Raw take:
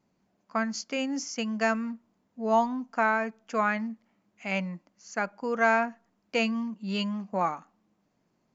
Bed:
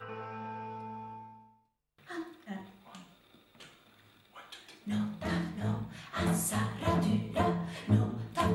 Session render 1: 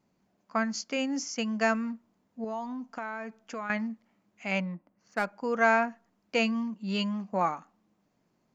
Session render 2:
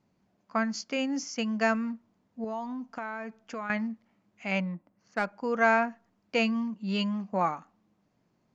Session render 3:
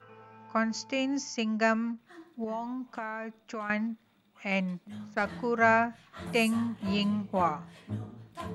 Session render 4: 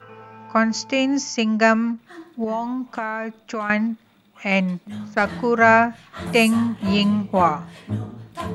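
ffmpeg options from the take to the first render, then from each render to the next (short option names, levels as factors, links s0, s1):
-filter_complex "[0:a]asettb=1/sr,asplit=3[s0][s1][s2];[s0]atrim=end=2.444[s3];[s1]atrim=start=2.44:end=3.7,asetpts=PTS-STARTPTS,afade=t=in:d=0.004:c=qsin,afade=t=out:st=1.256:d=0.004:c=qsin,acompressor=threshold=0.02:ratio=4:attack=3.2:release=140:knee=1:detection=peak[s4];[s2]atrim=start=3.696[s5];[s3][s4]acrossfade=d=0.004:c1=hsin:c2=qsin[s6];[s6][s5]acrossfade=d=0.004:c1=qsin:c2=hsin,asettb=1/sr,asplit=3[s7][s8][s9];[s7]atrim=end=4.604[s10];[s8]atrim=start=4.6:end=5.25,asetpts=PTS-STARTPTS,afade=t=in:d=0.004:c=qsin,afade=t=out:st=0.646:d=0.004:c=qsin,adynamicsmooth=sensitivity=8:basefreq=1700[s11];[s9]atrim=start=5.246[s12];[s10][s11]acrossfade=d=0.004:c1=hsin:c2=qsin[s13];[s13][s12]acrossfade=d=0.004:c1=qsin:c2=hsin"
-af "lowpass=6700,equalizer=f=100:t=o:w=1.1:g=5.5"
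-filter_complex "[1:a]volume=0.316[s0];[0:a][s0]amix=inputs=2:normalize=0"
-af "volume=3.16,alimiter=limit=0.794:level=0:latency=1"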